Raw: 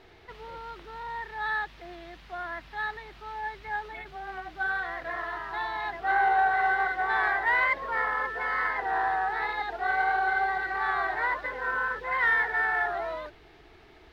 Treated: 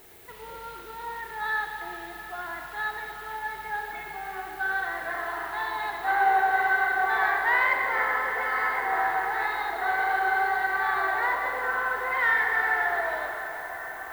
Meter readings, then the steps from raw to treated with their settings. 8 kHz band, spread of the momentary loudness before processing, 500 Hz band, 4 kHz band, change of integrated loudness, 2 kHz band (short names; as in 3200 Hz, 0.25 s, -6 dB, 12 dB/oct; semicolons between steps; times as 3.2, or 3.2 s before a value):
n/a, 17 LU, +2.0 dB, +2.0 dB, +1.5 dB, +2.0 dB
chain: low shelf 82 Hz -8 dB; added noise violet -54 dBFS; band-limited delay 0.774 s, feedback 83%, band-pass 980 Hz, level -16 dB; Schroeder reverb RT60 3.2 s, combs from 32 ms, DRR 2.5 dB